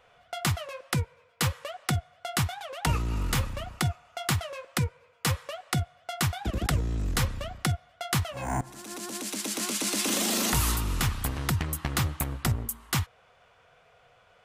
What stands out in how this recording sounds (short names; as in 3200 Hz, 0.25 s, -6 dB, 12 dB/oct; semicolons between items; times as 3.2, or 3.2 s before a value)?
noise floor -61 dBFS; spectral tilt -4.0 dB/oct